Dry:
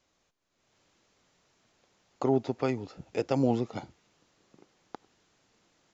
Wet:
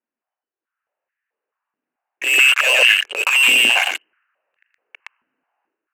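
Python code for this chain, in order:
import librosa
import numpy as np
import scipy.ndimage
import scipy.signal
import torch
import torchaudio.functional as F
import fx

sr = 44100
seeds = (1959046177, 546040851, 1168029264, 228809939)

p1 = fx.rattle_buzz(x, sr, strikes_db=-42.0, level_db=-32.0)
p2 = np.where(np.abs(p1) >= 10.0 ** (-42.5 / 20.0), p1, 0.0)
p3 = p1 + (p2 * librosa.db_to_amplitude(-11.0))
p4 = fx.freq_invert(p3, sr, carrier_hz=3000)
p5 = fx.peak_eq(p4, sr, hz=1600.0, db=6.0, octaves=0.47)
p6 = p5 + 10.0 ** (-3.5 / 20.0) * np.pad(p5, (int(119 * sr / 1000.0), 0))[:len(p5)]
p7 = fx.leveller(p6, sr, passes=5)
p8 = fx.env_lowpass(p7, sr, base_hz=1100.0, full_db=-17.0)
p9 = fx.transient(p8, sr, attack_db=-11, sustain_db=8)
p10 = fx.filter_held_highpass(p9, sr, hz=4.6, low_hz=250.0, high_hz=1800.0)
y = p10 * librosa.db_to_amplitude(-2.5)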